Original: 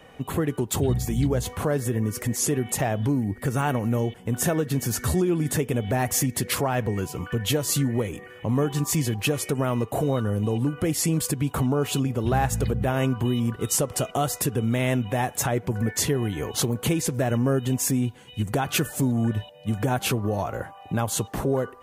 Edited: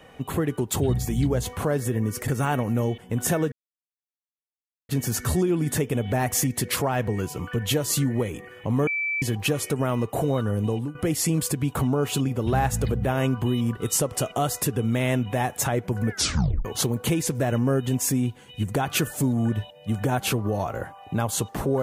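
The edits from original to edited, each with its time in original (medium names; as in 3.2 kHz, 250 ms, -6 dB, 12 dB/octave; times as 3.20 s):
2.28–3.44 s: delete
4.68 s: insert silence 1.37 s
8.66–9.01 s: bleep 2.32 kHz -23.5 dBFS
10.49–10.74 s: fade out, to -14 dB
15.89 s: tape stop 0.55 s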